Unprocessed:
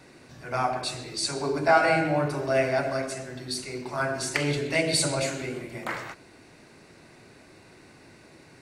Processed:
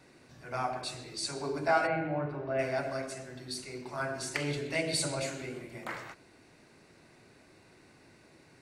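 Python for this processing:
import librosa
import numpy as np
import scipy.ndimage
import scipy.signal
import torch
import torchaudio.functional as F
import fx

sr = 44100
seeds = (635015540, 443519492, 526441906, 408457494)

y = fx.air_absorb(x, sr, metres=440.0, at=(1.86, 2.58), fade=0.02)
y = y * librosa.db_to_amplitude(-7.0)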